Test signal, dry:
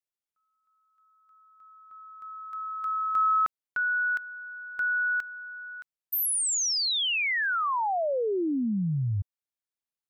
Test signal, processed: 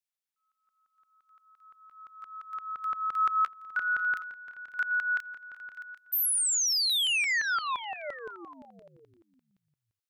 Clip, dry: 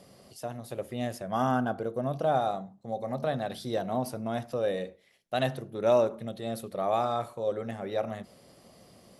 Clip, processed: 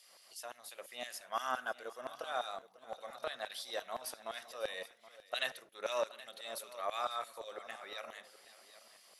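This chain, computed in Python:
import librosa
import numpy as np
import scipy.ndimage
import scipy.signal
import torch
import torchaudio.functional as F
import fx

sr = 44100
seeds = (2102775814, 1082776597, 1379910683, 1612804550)

y = fx.dynamic_eq(x, sr, hz=800.0, q=3.3, threshold_db=-42.0, ratio=4.0, max_db=-6)
y = fx.filter_lfo_highpass(y, sr, shape='saw_down', hz=5.8, low_hz=780.0, high_hz=2900.0, q=0.85)
y = fx.echo_multitap(y, sr, ms=(546, 773), db=(-19.5, -17.0))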